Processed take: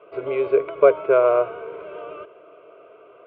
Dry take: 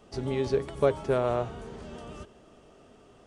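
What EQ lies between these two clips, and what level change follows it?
cabinet simulation 290–2400 Hz, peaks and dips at 300 Hz +5 dB, 460 Hz +5 dB, 670 Hz +9 dB, 1 kHz +4 dB, 1.5 kHz +7 dB, 2.3 kHz +9 dB; static phaser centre 1.2 kHz, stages 8; +6.5 dB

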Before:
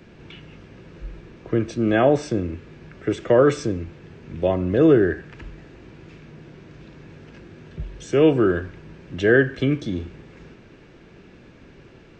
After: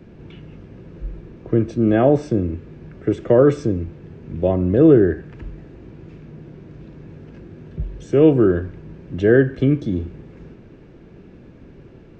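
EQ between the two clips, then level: tilt shelf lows +6.5 dB, about 870 Hz; -1.0 dB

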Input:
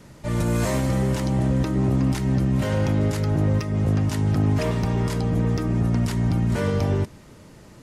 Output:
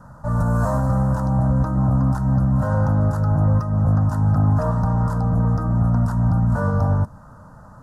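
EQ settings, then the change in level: resonant high shelf 2.1 kHz -13.5 dB, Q 3; static phaser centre 900 Hz, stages 4; dynamic bell 1.5 kHz, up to -4 dB, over -45 dBFS, Q 0.84; +5.5 dB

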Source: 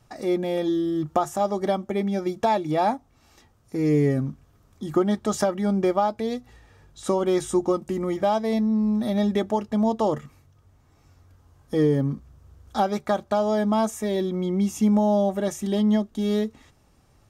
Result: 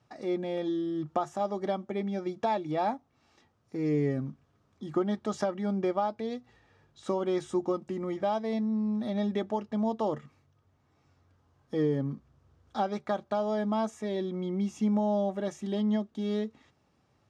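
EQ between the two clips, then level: band-pass 110–5100 Hz; -7.0 dB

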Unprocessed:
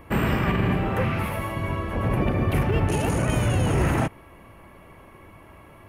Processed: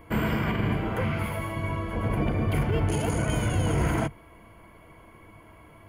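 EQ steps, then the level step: rippled EQ curve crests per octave 1.8, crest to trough 8 dB; -4.0 dB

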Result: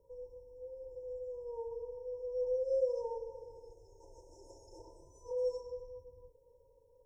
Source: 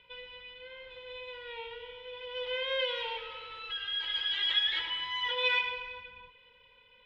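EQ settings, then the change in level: dynamic bell 830 Hz, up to -5 dB, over -55 dBFS, Q 4.6; brick-wall FIR band-stop 960–5200 Hz; static phaser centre 790 Hz, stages 6; +4.5 dB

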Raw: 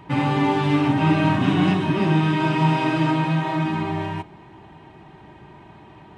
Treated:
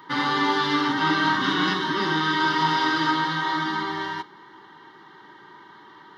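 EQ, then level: dynamic bell 4.8 kHz, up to +5 dB, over -49 dBFS, Q 1.2; high-pass 520 Hz 12 dB/octave; static phaser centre 2.5 kHz, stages 6; +7.0 dB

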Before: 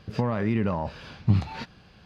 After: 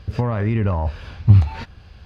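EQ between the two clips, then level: dynamic bell 4.8 kHz, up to -4 dB, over -54 dBFS, Q 1.2; resonant low shelf 110 Hz +11.5 dB, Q 1.5; +3.5 dB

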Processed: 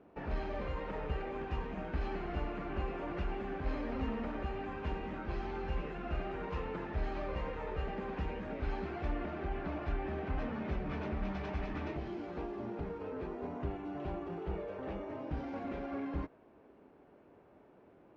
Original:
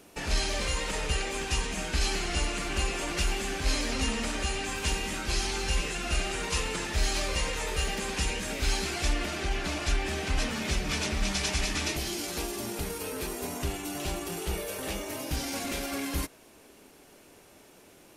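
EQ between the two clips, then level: high-pass 60 Hz 6 dB/octave; low-pass 1.2 kHz 12 dB/octave; distance through air 100 m; -3.5 dB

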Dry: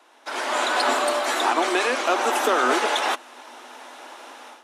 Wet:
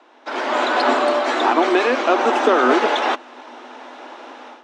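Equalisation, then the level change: low-pass 9.2 kHz 12 dB/octave; distance through air 120 m; bass shelf 440 Hz +9 dB; +3.0 dB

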